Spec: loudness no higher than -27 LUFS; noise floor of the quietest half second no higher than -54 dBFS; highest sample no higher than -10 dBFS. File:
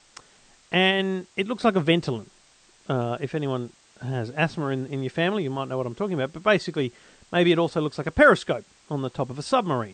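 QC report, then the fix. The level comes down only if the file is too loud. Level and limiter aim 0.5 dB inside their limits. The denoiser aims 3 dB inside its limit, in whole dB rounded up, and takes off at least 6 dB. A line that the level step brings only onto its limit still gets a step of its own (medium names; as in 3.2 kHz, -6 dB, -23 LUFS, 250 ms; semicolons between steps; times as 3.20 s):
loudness -24.5 LUFS: fail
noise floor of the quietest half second -58 dBFS: pass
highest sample -4.5 dBFS: fail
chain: trim -3 dB; peak limiter -10.5 dBFS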